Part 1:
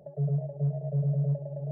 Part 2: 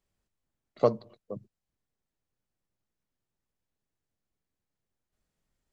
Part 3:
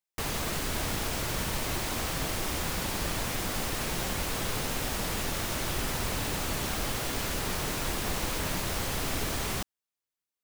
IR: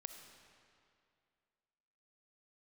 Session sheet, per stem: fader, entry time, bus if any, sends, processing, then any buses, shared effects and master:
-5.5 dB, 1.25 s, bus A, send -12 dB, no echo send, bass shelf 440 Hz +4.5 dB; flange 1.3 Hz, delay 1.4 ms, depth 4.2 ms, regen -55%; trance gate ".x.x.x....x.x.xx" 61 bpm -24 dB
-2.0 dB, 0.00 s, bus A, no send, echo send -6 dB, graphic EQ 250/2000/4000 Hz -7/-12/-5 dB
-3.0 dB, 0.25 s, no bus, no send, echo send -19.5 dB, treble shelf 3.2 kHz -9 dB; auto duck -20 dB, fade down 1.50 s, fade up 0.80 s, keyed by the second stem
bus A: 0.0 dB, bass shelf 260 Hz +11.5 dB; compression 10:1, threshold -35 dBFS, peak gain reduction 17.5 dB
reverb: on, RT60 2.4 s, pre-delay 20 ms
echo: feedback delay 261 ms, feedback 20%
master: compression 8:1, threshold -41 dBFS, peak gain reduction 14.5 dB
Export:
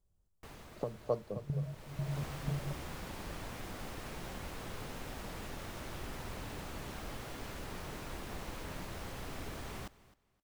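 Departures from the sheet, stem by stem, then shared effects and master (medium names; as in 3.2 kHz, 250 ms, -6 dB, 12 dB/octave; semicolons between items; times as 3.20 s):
stem 3 -3.0 dB -> -10.5 dB; master: missing compression 8:1, threshold -41 dBFS, peak gain reduction 14.5 dB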